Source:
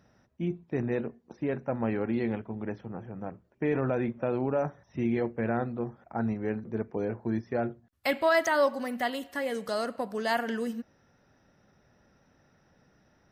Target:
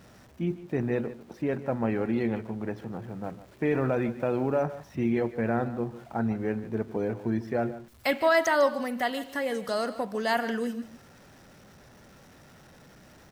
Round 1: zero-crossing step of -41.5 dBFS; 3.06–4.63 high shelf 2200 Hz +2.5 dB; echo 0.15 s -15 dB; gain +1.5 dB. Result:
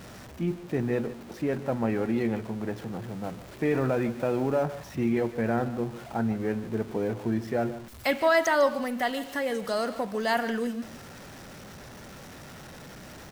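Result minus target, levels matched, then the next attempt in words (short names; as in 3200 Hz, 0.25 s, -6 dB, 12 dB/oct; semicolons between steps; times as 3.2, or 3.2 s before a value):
zero-crossing step: distortion +10 dB
zero-crossing step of -52 dBFS; 3.06–4.63 high shelf 2200 Hz +2.5 dB; echo 0.15 s -15 dB; gain +1.5 dB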